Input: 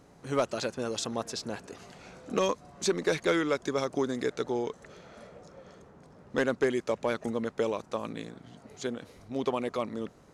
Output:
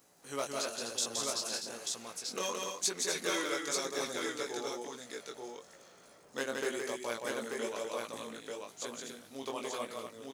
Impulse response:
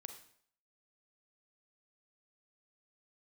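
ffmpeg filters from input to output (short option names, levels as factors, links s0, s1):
-af "aemphasis=mode=production:type=riaa,flanger=delay=16:depth=6.5:speed=1,aecho=1:1:170|250|887:0.668|0.447|0.668,volume=0.562"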